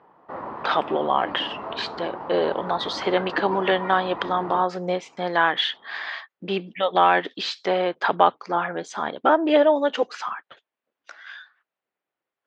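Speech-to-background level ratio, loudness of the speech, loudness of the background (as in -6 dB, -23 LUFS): 10.5 dB, -23.5 LUFS, -34.0 LUFS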